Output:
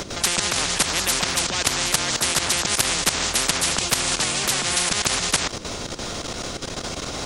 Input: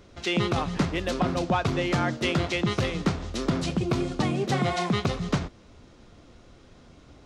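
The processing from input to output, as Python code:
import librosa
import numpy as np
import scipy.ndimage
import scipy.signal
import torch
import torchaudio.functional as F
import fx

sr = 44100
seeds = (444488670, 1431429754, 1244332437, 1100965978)

y = fx.bass_treble(x, sr, bass_db=10, treble_db=11)
y = fx.level_steps(y, sr, step_db=15)
y = fx.spectral_comp(y, sr, ratio=10.0)
y = y * 10.0 ** (5.5 / 20.0)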